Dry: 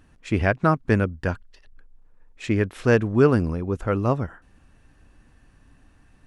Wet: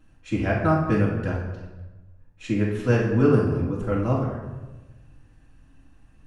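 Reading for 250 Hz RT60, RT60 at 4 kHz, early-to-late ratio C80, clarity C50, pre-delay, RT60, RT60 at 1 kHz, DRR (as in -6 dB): 1.4 s, 0.80 s, 5.5 dB, 2.5 dB, 4 ms, 1.2 s, 1.1 s, -7.0 dB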